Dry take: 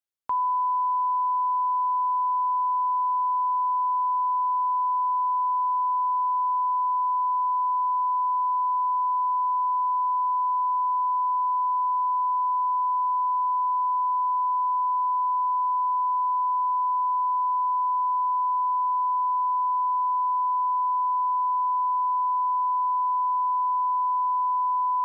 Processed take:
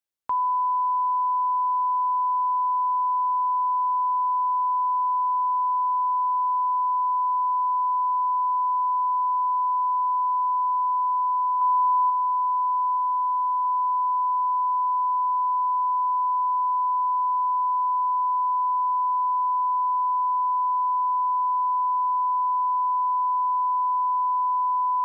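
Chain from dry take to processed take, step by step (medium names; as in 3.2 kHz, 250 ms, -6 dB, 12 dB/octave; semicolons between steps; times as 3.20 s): 11.61–12.10 s: dynamic bell 1 kHz, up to +3 dB, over -37 dBFS, Q 2.4; 12.97–13.65 s: band-stop 890 Hz, Q 12; trim +1 dB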